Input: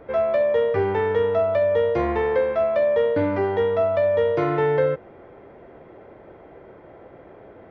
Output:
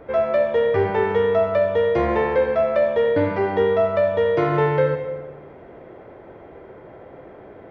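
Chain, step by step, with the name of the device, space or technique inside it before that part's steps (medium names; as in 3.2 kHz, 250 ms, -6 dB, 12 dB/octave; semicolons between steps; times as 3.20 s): bathroom (reverberation RT60 0.95 s, pre-delay 66 ms, DRR 5.5 dB); trim +2 dB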